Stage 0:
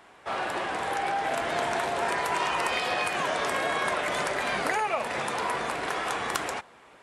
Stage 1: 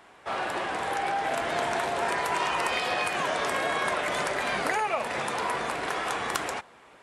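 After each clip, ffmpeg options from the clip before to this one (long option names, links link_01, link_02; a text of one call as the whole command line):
ffmpeg -i in.wav -af anull out.wav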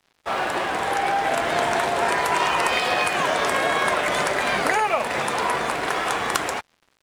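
ffmpeg -i in.wav -af "aeval=exprs='sgn(val(0))*max(abs(val(0))-0.00398,0)':channel_layout=same,volume=7dB" out.wav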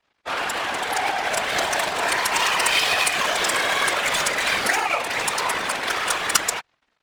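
ffmpeg -i in.wav -af "crystalizer=i=8.5:c=0,adynamicsmooth=sensitivity=1:basefreq=1900,afftfilt=real='hypot(re,im)*cos(2*PI*random(0))':imag='hypot(re,im)*sin(2*PI*random(1))':win_size=512:overlap=0.75" out.wav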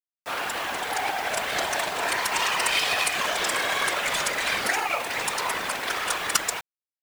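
ffmpeg -i in.wav -af "acrusher=bits=5:mix=0:aa=0.000001,volume=-4dB" out.wav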